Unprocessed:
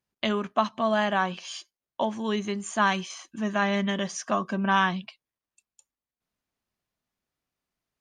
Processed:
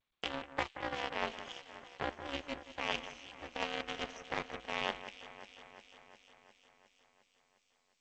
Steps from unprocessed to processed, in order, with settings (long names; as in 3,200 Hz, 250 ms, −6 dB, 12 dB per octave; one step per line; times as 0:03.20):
lower of the sound and its delayed copy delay 0.33 ms
high-pass filter 230 Hz 24 dB per octave
three-way crossover with the lows and the highs turned down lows −17 dB, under 300 Hz, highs −12 dB, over 4,300 Hz
reversed playback
downward compressor 4 to 1, threshold −36 dBFS, peak gain reduction 13.5 dB
reversed playback
ring modulation 140 Hz
harmonic generator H 6 −38 dB, 7 −18 dB, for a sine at −22 dBFS
on a send: delay that swaps between a low-pass and a high-pass 178 ms, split 2,400 Hz, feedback 80%, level −12 dB
on the sum: level +6.5 dB
G.722 64 kbit/s 16,000 Hz